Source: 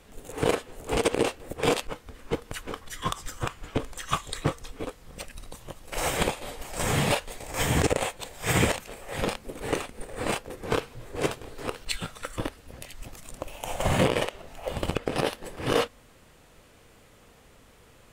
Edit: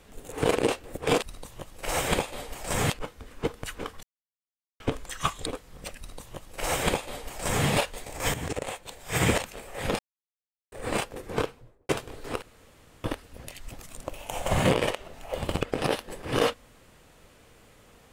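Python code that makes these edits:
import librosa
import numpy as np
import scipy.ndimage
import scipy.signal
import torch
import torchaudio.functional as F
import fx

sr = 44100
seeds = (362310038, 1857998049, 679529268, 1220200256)

y = fx.studio_fade_out(x, sr, start_s=10.61, length_s=0.62)
y = fx.edit(y, sr, fx.cut(start_s=0.56, length_s=0.56),
    fx.silence(start_s=2.91, length_s=0.77),
    fx.cut(start_s=4.34, length_s=0.46),
    fx.duplicate(start_s=5.31, length_s=1.68, to_s=1.78),
    fx.fade_in_from(start_s=7.68, length_s=1.03, floor_db=-13.0),
    fx.silence(start_s=9.33, length_s=0.73),
    fx.room_tone_fill(start_s=11.76, length_s=0.62), tone=tone)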